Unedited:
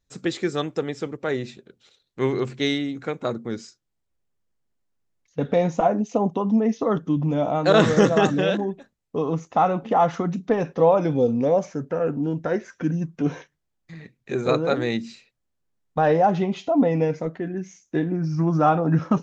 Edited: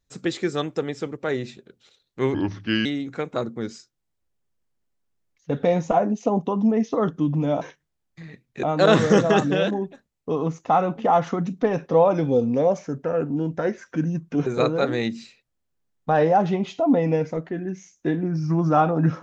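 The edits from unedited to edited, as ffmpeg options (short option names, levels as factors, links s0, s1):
-filter_complex "[0:a]asplit=6[s0][s1][s2][s3][s4][s5];[s0]atrim=end=2.344[s6];[s1]atrim=start=2.34:end=2.74,asetpts=PTS-STARTPTS,asetrate=34398,aresample=44100,atrim=end_sample=22615,asetpts=PTS-STARTPTS[s7];[s2]atrim=start=2.736:end=7.502[s8];[s3]atrim=start=13.328:end=14.352[s9];[s4]atrim=start=7.498:end=13.332[s10];[s5]atrim=start=14.348[s11];[s6][s7]acrossfade=d=0.004:c1=hsin:c2=hsin[s12];[s12][s8]acrossfade=d=0.004:c1=hsin:c2=hsin[s13];[s13][s9]acrossfade=d=0.004:c1=hsin:c2=hsin[s14];[s14][s10]acrossfade=d=0.004:c1=hsin:c2=hsin[s15];[s15][s11]acrossfade=d=0.004:c1=hsin:c2=hsin"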